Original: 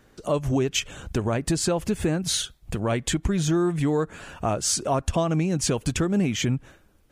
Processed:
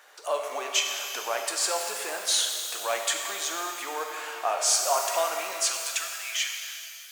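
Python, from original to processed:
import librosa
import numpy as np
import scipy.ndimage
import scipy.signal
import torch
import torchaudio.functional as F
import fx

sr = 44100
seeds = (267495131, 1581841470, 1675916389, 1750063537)

y = fx.law_mismatch(x, sr, coded='mu')
y = fx.highpass(y, sr, hz=fx.steps((0.0, 650.0), (5.53, 1400.0)), slope=24)
y = fx.rev_shimmer(y, sr, seeds[0], rt60_s=2.4, semitones=12, shimmer_db=-8, drr_db=2.5)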